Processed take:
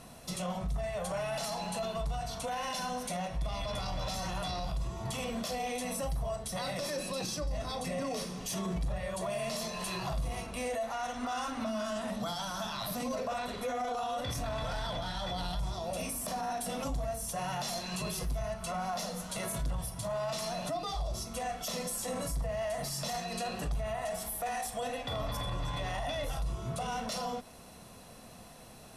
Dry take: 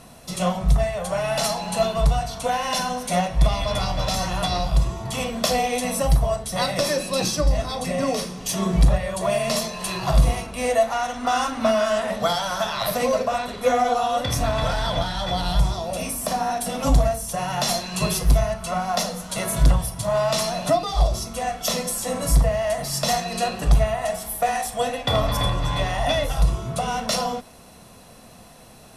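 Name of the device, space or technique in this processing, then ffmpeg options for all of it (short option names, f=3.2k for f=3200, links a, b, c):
stacked limiters: -filter_complex "[0:a]asettb=1/sr,asplit=3[a][b][c];[a]atrim=end=11.664[d];[b]atrim=start=11.66:end=13.16,asetpts=PTS-STARTPTS,afade=t=in:d=0.004:c=qsin,afade=t=out:st=1.496:d=0.004:c=qsin,equalizer=f=250:t=o:w=1:g=6,equalizer=f=500:t=o:w=1:g=-8,equalizer=f=2k:t=o:w=1:g=-6[e];[c]atrim=start=13.156[f];[d][e]acrossfade=d=0.004:c1=hsin:c2=qsin[g];[g][f]acrossfade=d=0.004:c1=qsin:c2=hsin,alimiter=limit=-12dB:level=0:latency=1:release=466,alimiter=limit=-19dB:level=0:latency=1:release=12,alimiter=limit=-22.5dB:level=0:latency=1:release=135,volume=-5dB"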